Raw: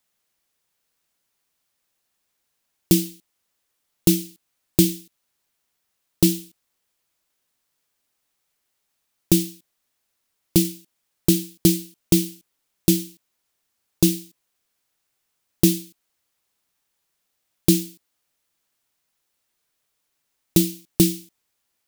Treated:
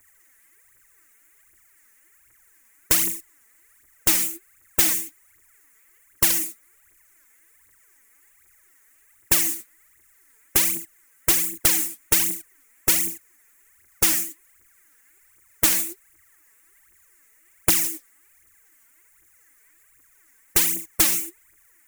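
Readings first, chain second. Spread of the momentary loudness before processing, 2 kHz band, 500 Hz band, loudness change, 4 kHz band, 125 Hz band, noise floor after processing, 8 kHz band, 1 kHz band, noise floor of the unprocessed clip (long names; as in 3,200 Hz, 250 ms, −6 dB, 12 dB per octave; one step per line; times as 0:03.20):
13 LU, +12.5 dB, −9.5 dB, +1.0 dB, +1.5 dB, −15.0 dB, −59 dBFS, +6.0 dB, can't be measured, −76 dBFS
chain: drawn EQ curve 110 Hz 0 dB, 190 Hz −18 dB, 320 Hz +1 dB, 660 Hz −13 dB, 2,000 Hz +8 dB, 4,200 Hz −28 dB, 6,900 Hz +2 dB
phase shifter 1.3 Hz, delay 4.7 ms, feedback 76%
every bin compressed towards the loudest bin 4 to 1
level −4.5 dB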